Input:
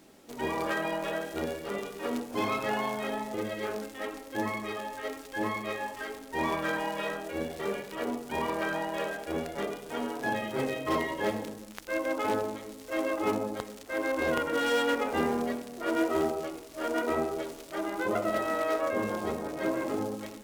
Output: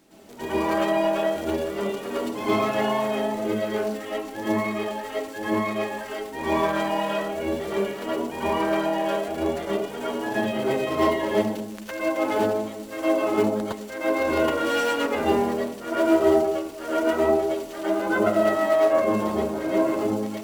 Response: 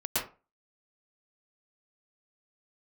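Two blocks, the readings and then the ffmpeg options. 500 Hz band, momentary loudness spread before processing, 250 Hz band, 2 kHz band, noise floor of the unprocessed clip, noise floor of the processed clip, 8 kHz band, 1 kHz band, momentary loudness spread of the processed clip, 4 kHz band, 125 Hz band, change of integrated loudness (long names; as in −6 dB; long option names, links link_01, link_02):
+8.5 dB, 8 LU, +8.0 dB, +3.5 dB, −47 dBFS, −37 dBFS, +4.5 dB, +6.0 dB, 9 LU, +5.0 dB, +6.5 dB, +7.5 dB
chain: -filter_complex "[1:a]atrim=start_sample=2205,afade=type=out:start_time=0.17:duration=0.01,atrim=end_sample=7938[link_01];[0:a][link_01]afir=irnorm=-1:irlink=0"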